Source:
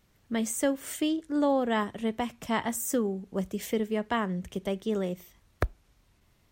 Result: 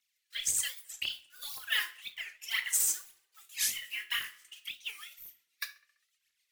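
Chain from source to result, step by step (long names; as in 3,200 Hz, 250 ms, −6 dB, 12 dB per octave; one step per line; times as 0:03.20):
one scale factor per block 5 bits
noise reduction from a noise print of the clip's start 13 dB
0:00.68–0:01.09: noise gate −35 dBFS, range −29 dB
inverse Chebyshev high-pass filter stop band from 480 Hz, stop band 70 dB
downward compressor, threshold −35 dBFS, peak gain reduction 6 dB
phase shifter 1.9 Hz, delay 3 ms, feedback 79%
rotating-speaker cabinet horn 1 Hz, later 8 Hz, at 0:03.43
0:03.43–0:04.44: double-tracking delay 22 ms −3 dB
tape delay 69 ms, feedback 68%, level −19.5 dB, low-pass 3,300 Hz
convolution reverb RT60 0.35 s, pre-delay 4 ms, DRR 7.5 dB
wow of a warped record 45 rpm, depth 250 cents
level +6.5 dB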